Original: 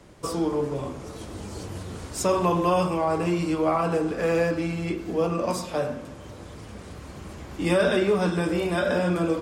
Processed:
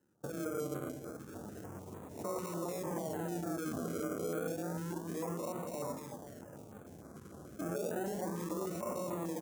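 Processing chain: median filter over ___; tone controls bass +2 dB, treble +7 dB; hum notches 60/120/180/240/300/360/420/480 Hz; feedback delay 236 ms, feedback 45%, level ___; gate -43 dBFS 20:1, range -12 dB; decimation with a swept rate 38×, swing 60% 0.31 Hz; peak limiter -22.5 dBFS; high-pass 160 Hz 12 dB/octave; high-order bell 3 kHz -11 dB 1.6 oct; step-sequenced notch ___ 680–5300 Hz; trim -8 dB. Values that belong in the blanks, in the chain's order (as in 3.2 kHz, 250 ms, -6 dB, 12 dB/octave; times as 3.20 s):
9 samples, -9.5 dB, 6.7 Hz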